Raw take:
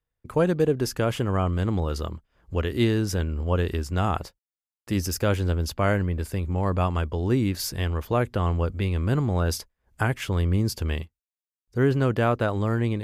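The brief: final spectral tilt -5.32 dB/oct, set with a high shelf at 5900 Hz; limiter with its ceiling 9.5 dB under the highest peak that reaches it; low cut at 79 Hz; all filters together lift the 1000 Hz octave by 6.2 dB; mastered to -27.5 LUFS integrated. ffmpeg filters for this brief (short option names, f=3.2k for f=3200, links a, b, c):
-af "highpass=79,equalizer=f=1k:t=o:g=8,highshelf=f=5.9k:g=7.5,volume=-0.5dB,alimiter=limit=-14dB:level=0:latency=1"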